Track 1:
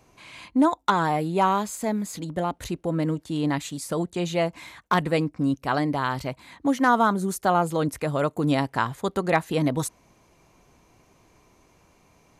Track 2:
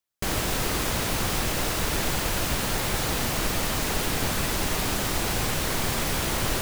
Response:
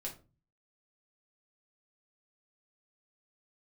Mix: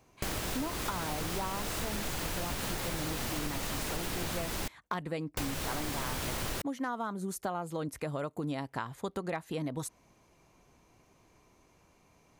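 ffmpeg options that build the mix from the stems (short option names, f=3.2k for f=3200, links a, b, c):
-filter_complex "[0:a]volume=-5.5dB[a];[1:a]volume=-1dB,asplit=3[b][c][d];[b]atrim=end=4.68,asetpts=PTS-STARTPTS,afade=t=out:st=4.676:d=0.004:c=hsin[e];[c]atrim=start=4.68:end=5.37,asetpts=PTS-STARTPTS,volume=0[f];[d]atrim=start=5.37,asetpts=PTS-STARTPTS,afade=t=in:d=0.004:c=hsin[g];[e][f][g]concat=n=3:v=0:a=1[h];[a][h]amix=inputs=2:normalize=0,acompressor=threshold=-32dB:ratio=6"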